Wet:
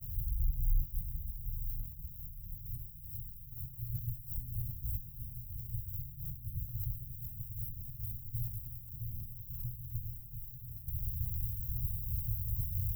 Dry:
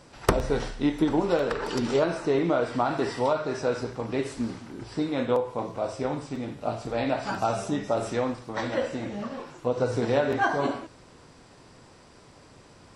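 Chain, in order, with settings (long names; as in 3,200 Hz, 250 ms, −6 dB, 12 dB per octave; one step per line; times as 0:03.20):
sign of each sample alone
inverse Chebyshev band-stop filter 580–4,200 Hz, stop band 80 dB
feedback delay with all-pass diffusion 895 ms, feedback 52%, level −5 dB
downward expander −33 dBFS
guitar amp tone stack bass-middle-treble 6-0-2
level +15.5 dB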